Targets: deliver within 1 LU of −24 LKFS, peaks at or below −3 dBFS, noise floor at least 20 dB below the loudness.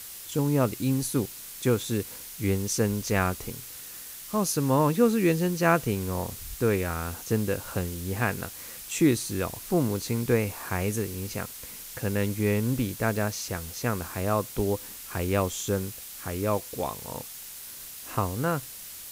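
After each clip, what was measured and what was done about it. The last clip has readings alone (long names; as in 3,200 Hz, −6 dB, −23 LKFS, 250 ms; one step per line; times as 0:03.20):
background noise floor −42 dBFS; target noise floor −48 dBFS; integrated loudness −28.0 LKFS; sample peak −8.0 dBFS; target loudness −24.0 LKFS
→ broadband denoise 6 dB, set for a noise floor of −42 dBFS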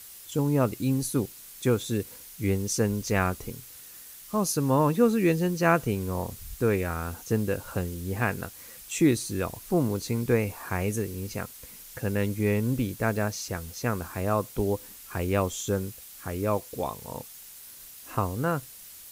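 background noise floor −47 dBFS; target noise floor −48 dBFS
→ broadband denoise 6 dB, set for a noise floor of −47 dBFS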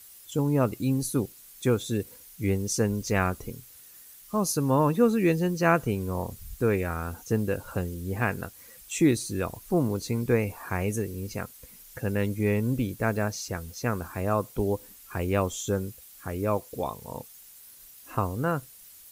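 background noise floor −50 dBFS; integrated loudness −28.0 LKFS; sample peak −8.0 dBFS; target loudness −24.0 LKFS
→ level +4 dB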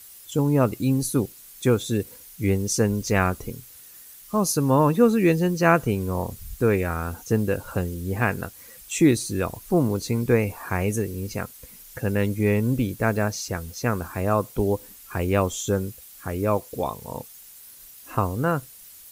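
integrated loudness −24.0 LKFS; sample peak −4.0 dBFS; background noise floor −46 dBFS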